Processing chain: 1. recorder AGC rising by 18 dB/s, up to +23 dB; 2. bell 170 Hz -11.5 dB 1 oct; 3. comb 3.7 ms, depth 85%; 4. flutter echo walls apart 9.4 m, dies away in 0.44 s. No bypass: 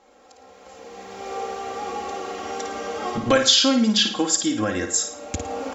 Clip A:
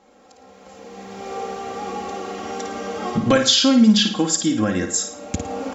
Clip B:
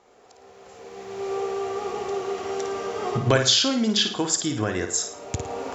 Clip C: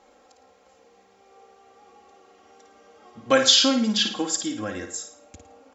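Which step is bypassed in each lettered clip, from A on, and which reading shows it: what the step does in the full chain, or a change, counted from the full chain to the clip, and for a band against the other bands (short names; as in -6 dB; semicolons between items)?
2, 125 Hz band +6.5 dB; 3, 125 Hz band +9.0 dB; 1, crest factor change +3.0 dB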